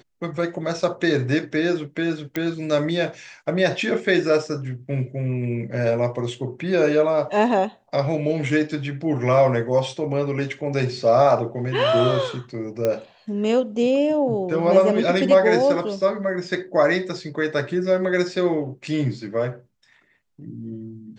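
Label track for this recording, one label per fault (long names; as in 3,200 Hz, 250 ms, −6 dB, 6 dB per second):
2.360000	2.360000	click −12 dBFS
12.850000	12.850000	click −10 dBFS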